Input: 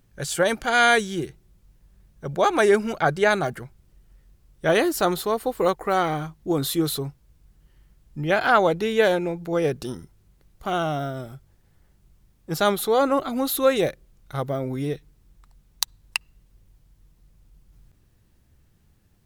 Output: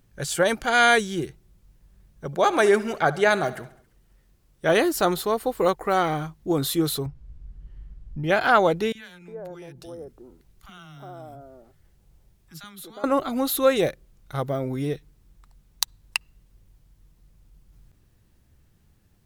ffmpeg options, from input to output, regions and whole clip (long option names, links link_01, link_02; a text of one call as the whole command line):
ffmpeg -i in.wav -filter_complex "[0:a]asettb=1/sr,asplit=3[link_01][link_02][link_03];[link_01]atrim=end=2.264[link_04];[link_02]atrim=start=2.26:end=4.71,asetpts=PTS-STARTPTS,afade=type=in:duration=0.004:curve=qsin,afade=type=out:start_time=2.446:duration=0.004:curve=qsin,lowshelf=frequency=110:gain=-8,aecho=1:1:68|136|204|272|340:0.126|0.0743|0.0438|0.0259|0.0153,atrim=end_sample=108045[link_05];[link_03]atrim=start=4.706[link_06];[link_04][link_05]acrossfade=duration=0.004:curve1=hsin:curve2=qsin[link_07];[link_07][link_06]acrossfade=duration=0.004:curve1=qsin:curve2=hsin,asettb=1/sr,asplit=3[link_08][link_09][link_10];[link_08]atrim=end=7.064[link_11];[link_09]atrim=start=7.06:end=8.24,asetpts=PTS-STARTPTS,afade=type=in:duration=0.004:curve=qsin,afade=type=out:start_time=1.176:duration=0.004:curve=qsin,aemphasis=mode=reproduction:type=bsi,acompressor=threshold=-34dB:ratio=2:attack=3.2:release=140:knee=1:detection=peak[link_12];[link_10]atrim=start=8.236[link_13];[link_11][link_12]acrossfade=duration=0.004:curve1=hsin:curve2=qsin[link_14];[link_14][link_13]acrossfade=duration=0.004:curve1=qsin:curve2=hsin,asettb=1/sr,asplit=3[link_15][link_16][link_17];[link_15]atrim=end=8.924[link_18];[link_16]atrim=start=8.92:end=13.04,asetpts=PTS-STARTPTS,afade=type=in:duration=0.004:curve=qsin,afade=type=out:start_time=4.116:duration=0.004:curve=qsin,acompressor=threshold=-47dB:ratio=2:attack=3.2:release=140:knee=1:detection=peak,acrossover=split=250|1100[link_19][link_20][link_21];[link_19]adelay=30[link_22];[link_20]adelay=360[link_23];[link_22][link_23][link_21]amix=inputs=3:normalize=0,atrim=end_sample=181692[link_24];[link_17]atrim=start=13.036[link_25];[link_18][link_24]acrossfade=duration=0.004:curve1=hsin:curve2=qsin[link_26];[link_26][link_25]acrossfade=duration=0.004:curve1=qsin:curve2=hsin" out.wav